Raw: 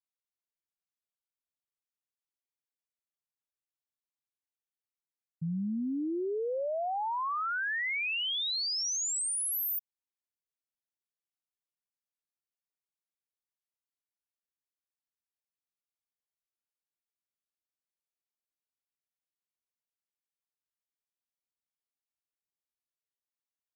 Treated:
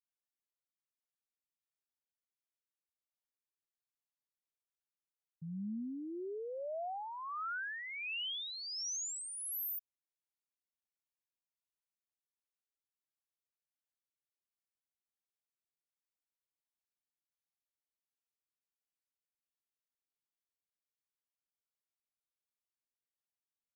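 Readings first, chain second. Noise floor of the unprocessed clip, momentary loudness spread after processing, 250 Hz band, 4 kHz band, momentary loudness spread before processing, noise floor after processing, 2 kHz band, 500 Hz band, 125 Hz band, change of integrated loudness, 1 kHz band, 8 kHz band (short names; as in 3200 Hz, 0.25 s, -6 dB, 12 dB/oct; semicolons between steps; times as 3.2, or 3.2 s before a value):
under -85 dBFS, 6 LU, -8.5 dB, -8.5 dB, 4 LU, under -85 dBFS, -9.0 dB, -8.5 dB, -9.5 dB, -8.5 dB, -9.0 dB, -8.5 dB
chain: harmonic tremolo 1.4 Hz, depth 50%, crossover 410 Hz; gain -6.5 dB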